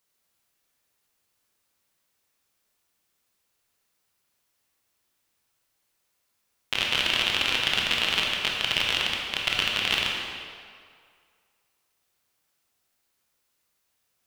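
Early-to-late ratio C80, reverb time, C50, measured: 2.0 dB, 2.0 s, 0.5 dB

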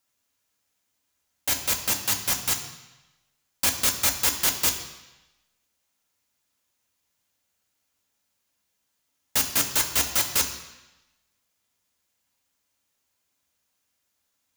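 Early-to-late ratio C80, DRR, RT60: 11.0 dB, 3.5 dB, 1.0 s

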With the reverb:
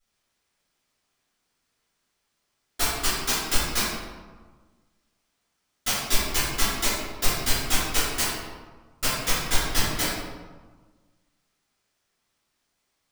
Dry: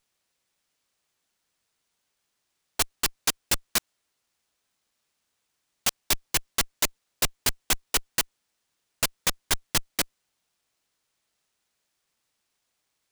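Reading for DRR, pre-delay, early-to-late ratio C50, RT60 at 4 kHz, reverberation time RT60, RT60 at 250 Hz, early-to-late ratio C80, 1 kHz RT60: −14.0 dB, 3 ms, −1.5 dB, 0.80 s, 1.4 s, 1.7 s, 1.5 dB, 1.4 s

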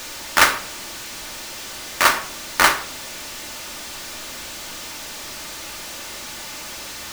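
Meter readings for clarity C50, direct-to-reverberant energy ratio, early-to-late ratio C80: 14.5 dB, 6.0 dB, 17.0 dB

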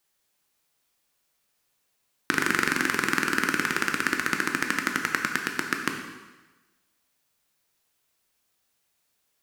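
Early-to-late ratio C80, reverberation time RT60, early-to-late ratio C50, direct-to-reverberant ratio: 7.0 dB, 1.2 s, 5.5 dB, 2.5 dB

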